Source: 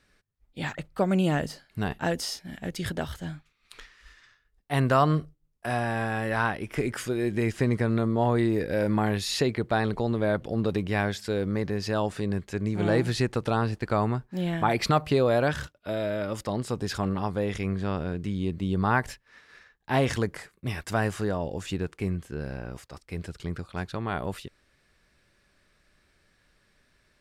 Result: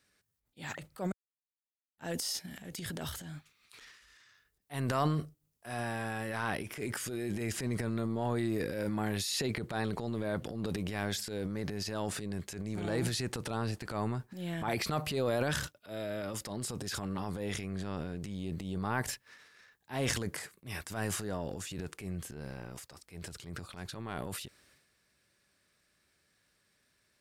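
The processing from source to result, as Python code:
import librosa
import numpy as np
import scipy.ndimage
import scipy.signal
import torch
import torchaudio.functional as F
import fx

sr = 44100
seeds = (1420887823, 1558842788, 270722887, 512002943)

y = fx.edit(x, sr, fx.silence(start_s=1.12, length_s=0.86), tone=tone)
y = scipy.signal.sosfilt(scipy.signal.butter(2, 79.0, 'highpass', fs=sr, output='sos'), y)
y = fx.high_shelf(y, sr, hz=5500.0, db=12.0)
y = fx.transient(y, sr, attack_db=-9, sustain_db=9)
y = y * 10.0 ** (-8.5 / 20.0)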